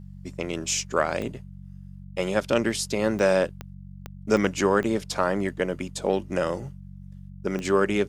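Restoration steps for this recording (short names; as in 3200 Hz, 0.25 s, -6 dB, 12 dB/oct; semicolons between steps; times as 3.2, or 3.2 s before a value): de-click; de-hum 47 Hz, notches 4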